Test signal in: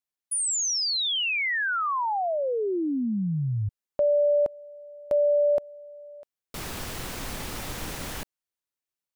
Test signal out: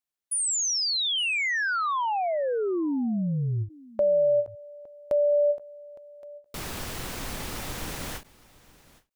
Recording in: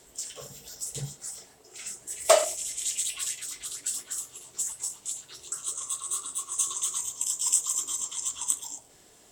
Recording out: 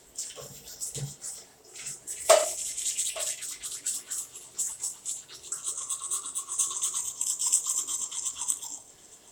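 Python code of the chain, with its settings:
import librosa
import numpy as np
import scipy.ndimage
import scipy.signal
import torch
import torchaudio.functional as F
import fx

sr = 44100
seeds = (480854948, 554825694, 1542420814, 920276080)

y = x + 10.0 ** (-21.5 / 20.0) * np.pad(x, (int(862 * sr / 1000.0), 0))[:len(x)]
y = fx.end_taper(y, sr, db_per_s=260.0)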